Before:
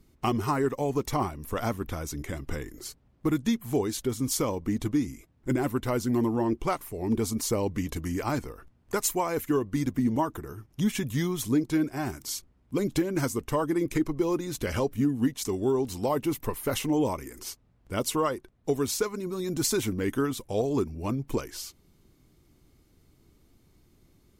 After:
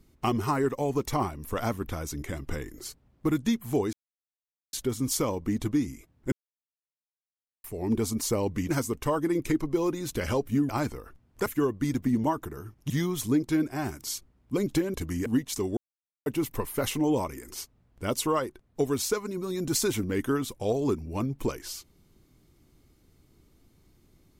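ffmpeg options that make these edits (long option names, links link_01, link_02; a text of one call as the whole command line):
ffmpeg -i in.wav -filter_complex "[0:a]asplit=12[link_01][link_02][link_03][link_04][link_05][link_06][link_07][link_08][link_09][link_10][link_11][link_12];[link_01]atrim=end=3.93,asetpts=PTS-STARTPTS,afade=type=out:start_time=3.926:duration=0.004:curve=hsin,apad=pad_dur=0.8[link_13];[link_02]atrim=start=3.93:end=5.52,asetpts=PTS-STARTPTS,afade=type=in:duration=0.004:curve=hsin,afade=type=out:start_time=1.586:duration=0.004:curve=hsin[link_14];[link_03]atrim=start=5.52:end=6.84,asetpts=PTS-STARTPTS,volume=0[link_15];[link_04]atrim=start=6.84:end=7.892,asetpts=PTS-STARTPTS,afade=type=in:duration=0.004:curve=hsin[link_16];[link_05]atrim=start=13.148:end=15.152[link_17];[link_06]atrim=start=8.208:end=8.982[link_18];[link_07]atrim=start=9.378:end=10.822[link_19];[link_08]atrim=start=11.108:end=13.152[link_20];[link_09]atrim=start=7.888:end=8.212[link_21];[link_10]atrim=start=15.148:end=15.66,asetpts=PTS-STARTPTS,afade=type=out:start_time=0.508:duration=0.004:curve=hsin[link_22];[link_11]atrim=start=15.66:end=16.15,asetpts=PTS-STARTPTS,volume=0[link_23];[link_12]atrim=start=16.15,asetpts=PTS-STARTPTS,afade=type=in:duration=0.004:curve=hsin[link_24];[link_13][link_14][link_15][link_16]concat=n=4:v=0:a=1[link_25];[link_25][link_17]acrossfade=duration=0.004:curve1=hsin:curve2=hsin[link_26];[link_26][link_18]acrossfade=duration=0.004:curve1=hsin:curve2=hsin[link_27];[link_27][link_19]acrossfade=duration=0.004:curve1=hsin:curve2=hsin[link_28];[link_28][link_20]acrossfade=duration=0.004:curve1=hsin:curve2=hsin[link_29];[link_29][link_21]acrossfade=duration=0.004:curve1=hsin:curve2=hsin[link_30];[link_22][link_23][link_24]concat=n=3:v=0:a=1[link_31];[link_30][link_31]acrossfade=duration=0.004:curve1=hsin:curve2=hsin" out.wav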